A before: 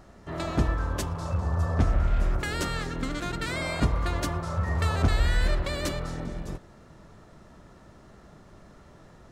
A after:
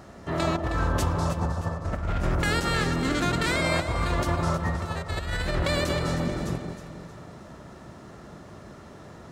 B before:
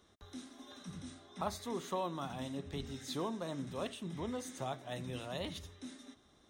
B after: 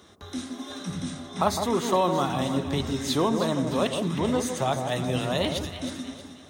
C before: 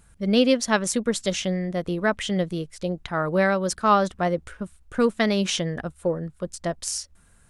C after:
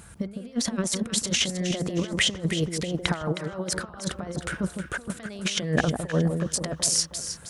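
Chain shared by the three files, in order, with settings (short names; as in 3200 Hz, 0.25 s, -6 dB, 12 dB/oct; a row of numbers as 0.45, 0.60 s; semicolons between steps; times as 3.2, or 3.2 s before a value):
HPF 73 Hz 12 dB/oct; negative-ratio compressor -31 dBFS, ratio -0.5; echo with dull and thin repeats by turns 0.157 s, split 1100 Hz, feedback 63%, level -6 dB; match loudness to -27 LUFS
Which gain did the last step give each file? +4.5, +14.0, +3.5 dB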